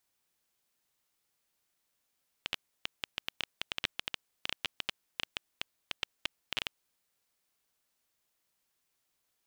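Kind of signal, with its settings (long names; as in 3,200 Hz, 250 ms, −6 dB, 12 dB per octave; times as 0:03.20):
Geiger counter clicks 9.9 per second −14.5 dBFS 4.27 s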